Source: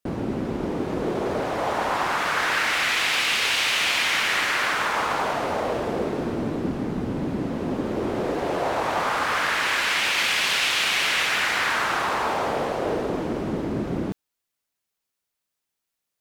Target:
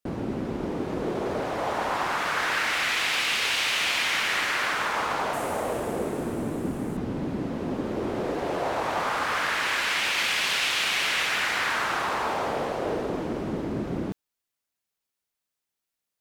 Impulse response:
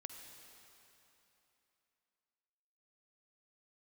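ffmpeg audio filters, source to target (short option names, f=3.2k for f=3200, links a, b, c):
-filter_complex "[0:a]asettb=1/sr,asplit=3[a][b][c];[a]atrim=end=5.334[d];[b]atrim=start=5.33:end=6.97,asetpts=PTS-STARTPTS,afade=t=in:d=0.004:c=qsin,afade=t=out:st=1.636:d=0.004:c=qsin,highshelf=f=6.7k:t=q:w=1.5:g=10.5[e];[c]atrim=start=6.966[f];[d][e]acrossfade=d=0.004:c1=hsin:c2=qsin[g];[g][f]acrossfade=d=0.004:c1=qsin:c2=hsin,volume=-3dB"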